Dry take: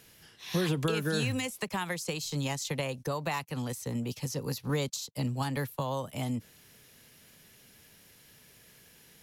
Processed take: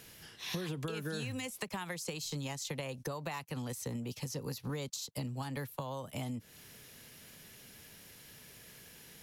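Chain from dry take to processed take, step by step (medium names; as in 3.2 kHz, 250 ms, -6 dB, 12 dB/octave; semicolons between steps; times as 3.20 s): compression 5:1, threshold -40 dBFS, peak gain reduction 14 dB; trim +3 dB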